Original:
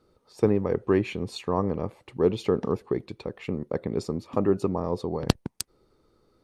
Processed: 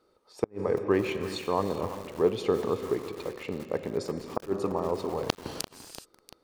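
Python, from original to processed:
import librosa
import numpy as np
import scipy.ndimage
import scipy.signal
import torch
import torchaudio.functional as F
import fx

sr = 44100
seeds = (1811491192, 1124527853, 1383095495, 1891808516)

y = fx.bass_treble(x, sr, bass_db=-13, treble_db=-1)
y = fx.rev_gated(y, sr, seeds[0], gate_ms=450, shape='flat', drr_db=8.5)
y = fx.dynamic_eq(y, sr, hz=110.0, q=1.3, threshold_db=-47.0, ratio=4.0, max_db=7)
y = fx.gate_flip(y, sr, shuts_db=-11.0, range_db=-36)
y = fx.echo_crushed(y, sr, ms=342, feedback_pct=55, bits=6, wet_db=-11.5)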